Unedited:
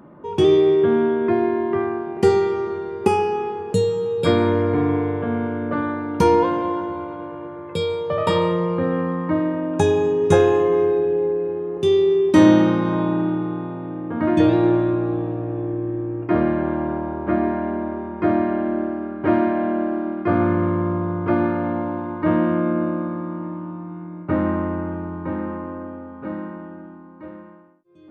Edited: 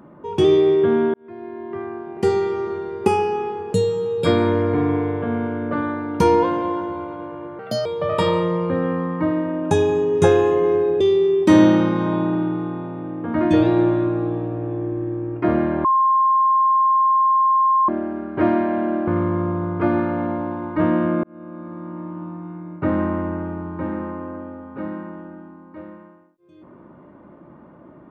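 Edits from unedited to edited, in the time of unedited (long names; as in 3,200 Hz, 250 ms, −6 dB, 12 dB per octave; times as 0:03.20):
0:01.14–0:02.73: fade in
0:07.59–0:07.94: play speed 132%
0:11.09–0:11.87: remove
0:16.71–0:18.75: beep over 1,060 Hz −13 dBFS
0:19.94–0:20.54: remove
0:22.70–0:23.71: fade in linear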